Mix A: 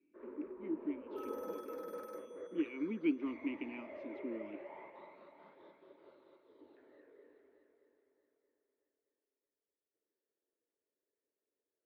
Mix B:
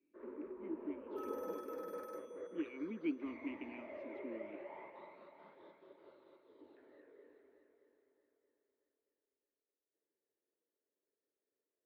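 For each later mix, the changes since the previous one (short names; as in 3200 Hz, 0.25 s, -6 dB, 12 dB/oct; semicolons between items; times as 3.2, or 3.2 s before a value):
speech -5.0 dB; reverb: on, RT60 0.60 s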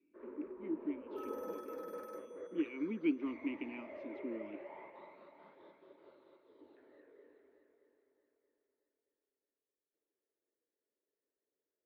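speech +5.0 dB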